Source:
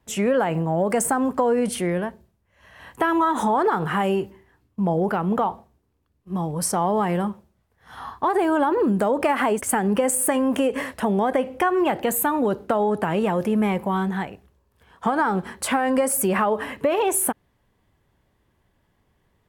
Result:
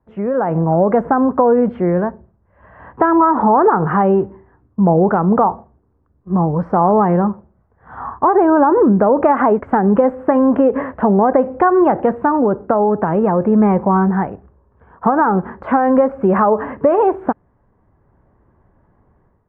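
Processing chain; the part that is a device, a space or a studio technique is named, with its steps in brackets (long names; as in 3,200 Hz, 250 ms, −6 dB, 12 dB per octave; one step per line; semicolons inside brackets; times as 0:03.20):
action camera in a waterproof case (low-pass filter 1,400 Hz 24 dB per octave; automatic gain control gain up to 11.5 dB; AAC 96 kbit/s 44,100 Hz)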